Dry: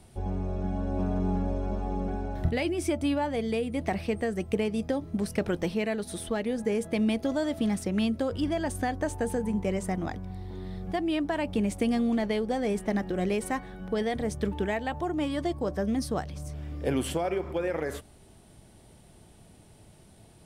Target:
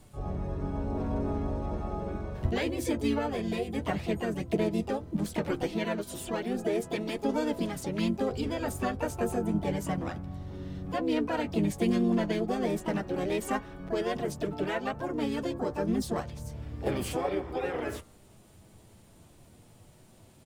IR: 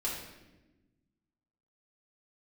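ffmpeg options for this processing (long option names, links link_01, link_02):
-filter_complex "[0:a]flanger=delay=6.8:depth=3.3:regen=-28:speed=0.14:shape=triangular,bandreject=frequency=171.3:width_type=h:width=4,bandreject=frequency=342.6:width_type=h:width=4,bandreject=frequency=513.9:width_type=h:width=4,bandreject=frequency=685.2:width_type=h:width=4,bandreject=frequency=856.5:width_type=h:width=4,bandreject=frequency=1027.8:width_type=h:width=4,bandreject=frequency=1199.1:width_type=h:width=4,bandreject=frequency=1370.4:width_type=h:width=4,bandreject=frequency=1541.7:width_type=h:width=4,asplit=3[link_01][link_02][link_03];[link_02]asetrate=35002,aresample=44100,atempo=1.25992,volume=-4dB[link_04];[link_03]asetrate=66075,aresample=44100,atempo=0.66742,volume=-6dB[link_05];[link_01][link_04][link_05]amix=inputs=3:normalize=0"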